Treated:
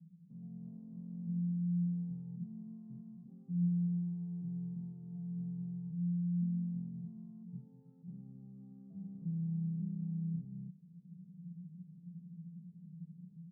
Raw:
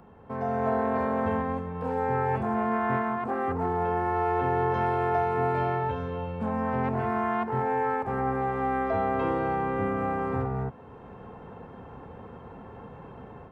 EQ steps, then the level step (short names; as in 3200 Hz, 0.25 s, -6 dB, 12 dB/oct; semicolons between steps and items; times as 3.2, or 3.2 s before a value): Butterworth band-pass 170 Hz, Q 7.8; +7.0 dB